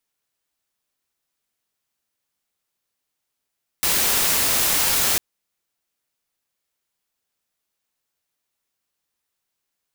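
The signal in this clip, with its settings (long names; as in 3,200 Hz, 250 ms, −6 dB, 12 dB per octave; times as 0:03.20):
noise white, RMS −19.5 dBFS 1.35 s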